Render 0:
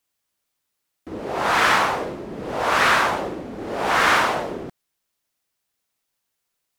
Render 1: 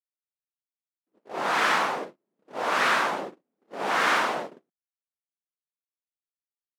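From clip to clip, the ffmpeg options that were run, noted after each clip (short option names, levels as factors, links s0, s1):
-af "agate=range=0.00708:threshold=0.0501:ratio=16:detection=peak,highpass=f=170:w=0.5412,highpass=f=170:w=1.3066,highshelf=f=12000:g=-5.5,volume=0.531"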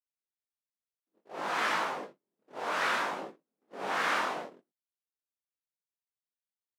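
-af "flanger=delay=18:depth=5.3:speed=0.59,volume=0.631"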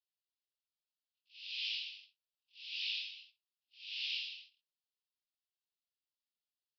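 -af "asuperpass=centerf=3700:order=12:qfactor=1.4,volume=1.33"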